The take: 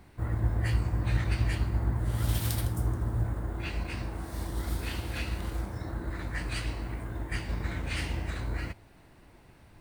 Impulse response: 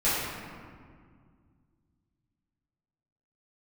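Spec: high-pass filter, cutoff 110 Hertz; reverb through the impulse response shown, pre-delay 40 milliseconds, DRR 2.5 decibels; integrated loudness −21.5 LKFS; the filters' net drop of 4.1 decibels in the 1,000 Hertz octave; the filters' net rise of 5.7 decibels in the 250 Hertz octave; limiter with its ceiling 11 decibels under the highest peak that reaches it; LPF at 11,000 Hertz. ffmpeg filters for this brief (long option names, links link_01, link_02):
-filter_complex "[0:a]highpass=110,lowpass=11000,equalizer=frequency=250:width_type=o:gain=8.5,equalizer=frequency=1000:width_type=o:gain=-6,alimiter=level_in=3dB:limit=-24dB:level=0:latency=1,volume=-3dB,asplit=2[link_01][link_02];[1:a]atrim=start_sample=2205,adelay=40[link_03];[link_02][link_03]afir=irnorm=-1:irlink=0,volume=-16dB[link_04];[link_01][link_04]amix=inputs=2:normalize=0,volume=12.5dB"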